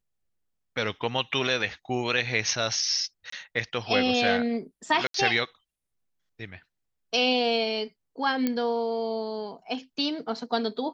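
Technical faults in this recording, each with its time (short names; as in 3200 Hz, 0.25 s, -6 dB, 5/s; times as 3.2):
3.3–3.32 gap 24 ms
5.07–5.14 gap 73 ms
8.47 pop -13 dBFS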